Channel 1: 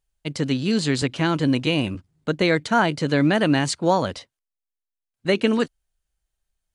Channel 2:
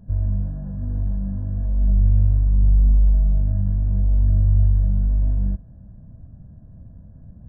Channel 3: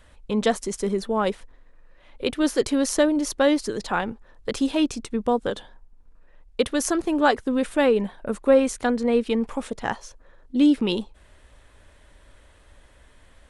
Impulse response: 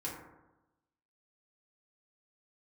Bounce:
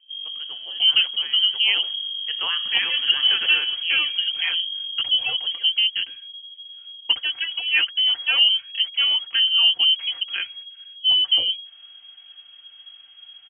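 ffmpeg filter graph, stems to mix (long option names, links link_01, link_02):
-filter_complex "[0:a]volume=-9dB,afade=type=in:start_time=2.03:duration=0.32:silence=0.421697,afade=type=out:start_time=3.75:duration=0.62:silence=0.237137,asplit=2[link_01][link_02];[link_02]volume=-9dB[link_03];[1:a]acontrast=49,asoftclip=type=tanh:threshold=-10dB,volume=-17dB[link_04];[2:a]lowpass=2400,equalizer=frequency=1200:width=0.44:gain=-8,aecho=1:1:4.7:0.85,adelay=500,volume=2.5dB[link_05];[3:a]atrim=start_sample=2205[link_06];[link_03][link_06]afir=irnorm=-1:irlink=0[link_07];[link_01][link_04][link_05][link_07]amix=inputs=4:normalize=0,lowpass=frequency=2800:width_type=q:width=0.5098,lowpass=frequency=2800:width_type=q:width=0.6013,lowpass=frequency=2800:width_type=q:width=0.9,lowpass=frequency=2800:width_type=q:width=2.563,afreqshift=-3300"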